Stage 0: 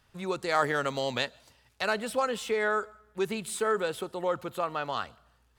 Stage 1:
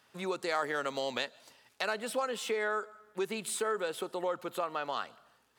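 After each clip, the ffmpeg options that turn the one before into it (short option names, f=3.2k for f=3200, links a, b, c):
-af "highpass=240,acompressor=threshold=-37dB:ratio=2,volume=2.5dB"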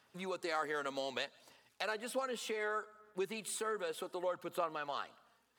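-af "aphaser=in_gain=1:out_gain=1:delay=4.4:decay=0.32:speed=0.65:type=sinusoidal,volume=-5.5dB"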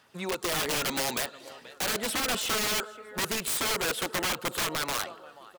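-af "aecho=1:1:481|962|1443:0.0708|0.034|0.0163,dynaudnorm=f=150:g=7:m=5dB,aeval=exprs='(mod(35.5*val(0)+1,2)-1)/35.5':c=same,volume=8dB"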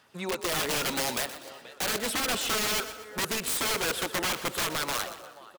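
-filter_complex "[0:a]asplit=5[a][b][c][d][e];[b]adelay=122,afreqshift=32,volume=-13dB[f];[c]adelay=244,afreqshift=64,volume=-20.7dB[g];[d]adelay=366,afreqshift=96,volume=-28.5dB[h];[e]adelay=488,afreqshift=128,volume=-36.2dB[i];[a][f][g][h][i]amix=inputs=5:normalize=0"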